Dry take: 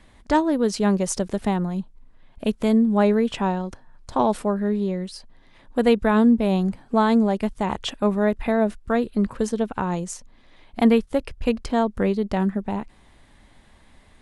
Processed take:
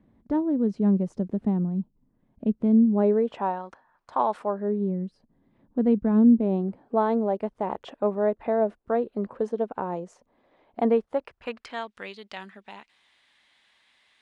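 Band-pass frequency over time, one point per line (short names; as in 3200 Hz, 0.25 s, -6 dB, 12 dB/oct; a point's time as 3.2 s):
band-pass, Q 1.2
2.77 s 210 Hz
3.64 s 1100 Hz
4.38 s 1100 Hz
4.92 s 210 Hz
6.12 s 210 Hz
7 s 560 Hz
10.94 s 560 Hz
11.94 s 3100 Hz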